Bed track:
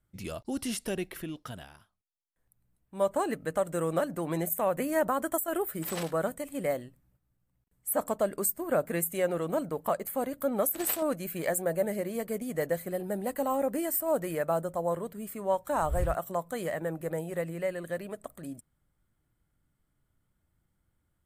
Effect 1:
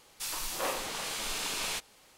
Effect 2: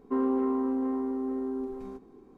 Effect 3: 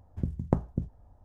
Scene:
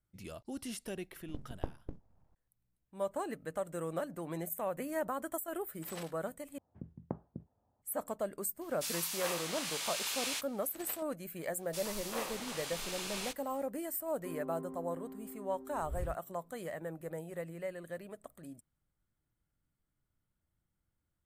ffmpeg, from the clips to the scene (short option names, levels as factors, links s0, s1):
-filter_complex "[3:a]asplit=2[s0][s1];[1:a]asplit=2[s2][s3];[0:a]volume=0.376[s4];[s0]aeval=exprs='abs(val(0))':c=same[s5];[s1]highpass=150,lowpass=2000[s6];[s2]highpass=f=1400:p=1[s7];[2:a]equalizer=f=860:t=o:w=0.77:g=-4[s8];[s4]asplit=2[s9][s10];[s9]atrim=end=6.584[s11];[s6]atrim=end=1.24,asetpts=PTS-STARTPTS,volume=0.251[s12];[s10]atrim=start=7.816[s13];[s5]atrim=end=1.24,asetpts=PTS-STARTPTS,volume=0.266,afade=t=in:d=0.004:c=hsin,afade=t=out:st=1.236:d=0.004:c=hsin,adelay=1110[s14];[s7]atrim=end=2.17,asetpts=PTS-STARTPTS,volume=0.841,afade=t=in:d=0.004:c=hsin,afade=t=out:st=2.166:d=0.004:c=hsin,adelay=8610[s15];[s3]atrim=end=2.17,asetpts=PTS-STARTPTS,volume=0.473,afade=t=in:d=0.1,afade=t=out:st=2.07:d=0.1,adelay=11530[s16];[s8]atrim=end=2.37,asetpts=PTS-STARTPTS,volume=0.133,afade=t=in:d=0.004:c=hsin,afade=t=out:st=2.366:d=0.004:c=hsin,adelay=14140[s17];[s11][s12]acrossfade=d=0.004:c1=hsin:c2=hsin[s18];[s18][s13]acrossfade=d=0.004:c1=hsin:c2=hsin[s19];[s19][s14][s15][s16][s17]amix=inputs=5:normalize=0"